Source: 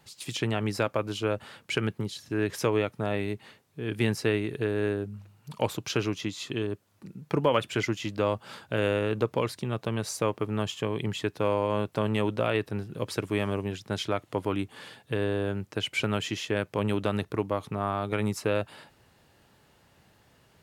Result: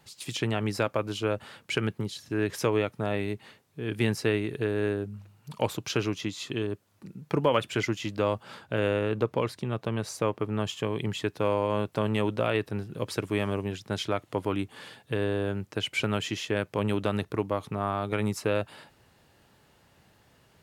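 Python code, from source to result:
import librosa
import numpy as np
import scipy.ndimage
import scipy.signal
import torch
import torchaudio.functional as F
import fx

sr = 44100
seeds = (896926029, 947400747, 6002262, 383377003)

y = fx.high_shelf(x, sr, hz=4000.0, db=-5.5, at=(8.43, 10.65))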